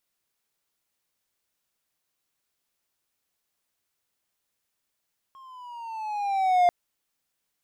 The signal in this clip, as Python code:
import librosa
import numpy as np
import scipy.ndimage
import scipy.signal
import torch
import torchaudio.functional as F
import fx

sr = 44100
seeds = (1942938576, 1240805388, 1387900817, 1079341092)

y = fx.riser_tone(sr, length_s=1.34, level_db=-13.0, wave='triangle', hz=1080.0, rise_st=-7.5, swell_db=31)